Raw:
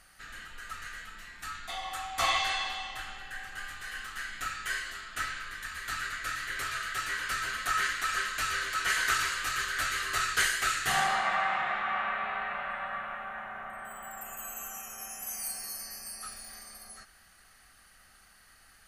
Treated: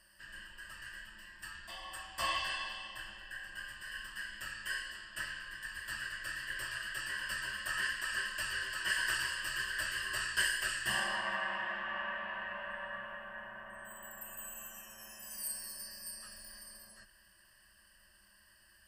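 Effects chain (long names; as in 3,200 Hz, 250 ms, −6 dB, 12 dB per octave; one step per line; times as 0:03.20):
EQ curve with evenly spaced ripples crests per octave 1.3, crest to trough 17 dB
level −9 dB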